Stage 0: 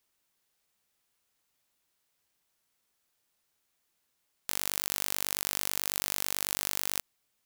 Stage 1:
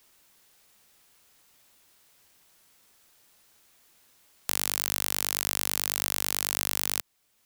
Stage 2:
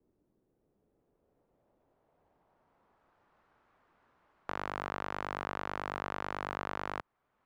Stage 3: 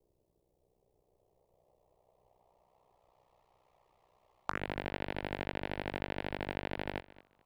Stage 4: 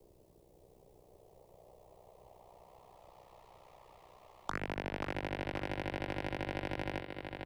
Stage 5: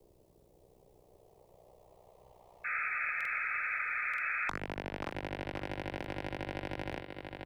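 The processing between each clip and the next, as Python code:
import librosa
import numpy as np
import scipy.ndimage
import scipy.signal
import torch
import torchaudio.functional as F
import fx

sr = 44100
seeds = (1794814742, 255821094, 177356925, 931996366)

y1 = fx.band_squash(x, sr, depth_pct=40)
y1 = F.gain(torch.from_numpy(y1), 3.5).numpy()
y2 = fx.filter_sweep_lowpass(y1, sr, from_hz=350.0, to_hz=1200.0, start_s=0.49, end_s=3.4, q=1.5)
y3 = fx.env_phaser(y2, sr, low_hz=250.0, high_hz=1200.0, full_db=-34.5)
y3 = fx.echo_feedback(y3, sr, ms=207, feedback_pct=23, wet_db=-19.5)
y3 = y3 * np.sin(2.0 * np.pi * 31.0 * np.arange(len(y3)) / sr)
y3 = F.gain(torch.from_numpy(y3), 7.5).numpy()
y4 = fx.echo_feedback(y3, sr, ms=534, feedback_pct=39, wet_db=-9.0)
y4 = 10.0 ** (-22.0 / 20.0) * np.tanh(y4 / 10.0 ** (-22.0 / 20.0))
y4 = fx.band_squash(y4, sr, depth_pct=40)
y4 = F.gain(torch.from_numpy(y4), 1.0).numpy()
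y5 = fx.spec_paint(y4, sr, seeds[0], shape='noise', start_s=2.64, length_s=1.86, low_hz=1200.0, high_hz=2600.0, level_db=-34.0)
y5 = fx.buffer_crackle(y5, sr, first_s=0.37, period_s=0.93, block=2048, kind='repeat')
y5 = F.gain(torch.from_numpy(y5), -1.0).numpy()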